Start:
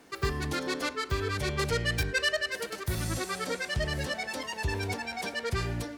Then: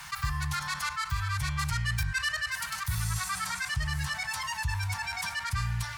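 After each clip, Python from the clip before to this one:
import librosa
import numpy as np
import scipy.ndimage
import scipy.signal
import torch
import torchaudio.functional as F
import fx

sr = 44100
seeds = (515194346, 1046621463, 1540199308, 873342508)

y = fx.dynamic_eq(x, sr, hz=3300.0, q=0.87, threshold_db=-44.0, ratio=4.0, max_db=-6)
y = scipy.signal.sosfilt(scipy.signal.ellip(3, 1.0, 80, [140.0, 970.0], 'bandstop', fs=sr, output='sos'), y)
y = fx.env_flatten(y, sr, amount_pct=50)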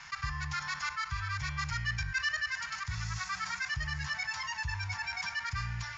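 y = np.sign(x) * np.maximum(np.abs(x) - 10.0 ** (-54.5 / 20.0), 0.0)
y = scipy.signal.sosfilt(scipy.signal.cheby1(6, 6, 7100.0, 'lowpass', fs=sr, output='sos'), y)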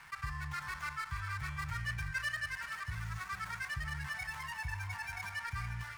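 y = scipy.signal.medfilt(x, 9)
y = y + 10.0 ** (-11.0 / 20.0) * np.pad(y, (int(443 * sr / 1000.0), 0))[:len(y)]
y = y * 10.0 ** (-3.5 / 20.0)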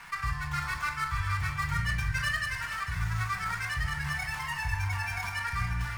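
y = fx.room_shoebox(x, sr, seeds[0], volume_m3=540.0, walls='furnished', distance_m=1.8)
y = y * 10.0 ** (6.0 / 20.0)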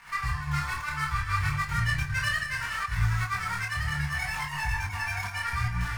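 y = fx.volume_shaper(x, sr, bpm=148, per_beat=1, depth_db=-8, release_ms=66.0, shape='slow start')
y = fx.doubler(y, sr, ms=27.0, db=-11.0)
y = fx.detune_double(y, sr, cents=23)
y = y * 10.0 ** (6.0 / 20.0)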